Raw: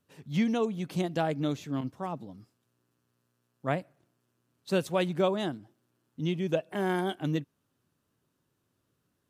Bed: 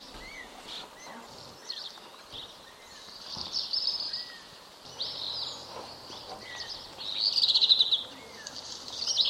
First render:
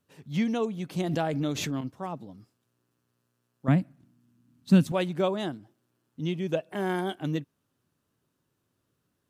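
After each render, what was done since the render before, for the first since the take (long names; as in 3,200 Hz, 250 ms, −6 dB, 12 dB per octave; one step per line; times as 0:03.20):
0:00.99–0:01.75: background raised ahead of every attack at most 22 dB per second
0:03.68–0:04.92: low shelf with overshoot 330 Hz +9.5 dB, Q 3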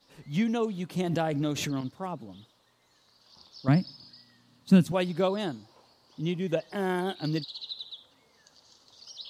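mix in bed −17.5 dB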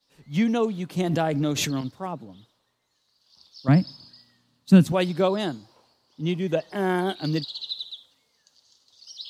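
in parallel at −3 dB: brickwall limiter −20.5 dBFS, peak gain reduction 10.5 dB
on the sum: multiband upward and downward expander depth 40%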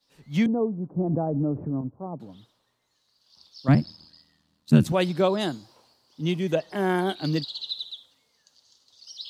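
0:00.46–0:02.20: Bessel low-pass filter 610 Hz, order 8
0:03.74–0:04.85: ring modulation 40 Hz
0:05.41–0:06.55: high-shelf EQ 4,400 Hz +5.5 dB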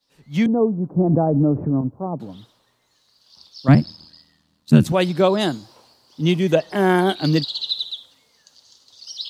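automatic gain control gain up to 8.5 dB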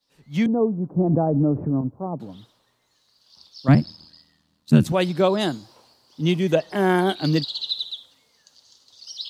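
level −2.5 dB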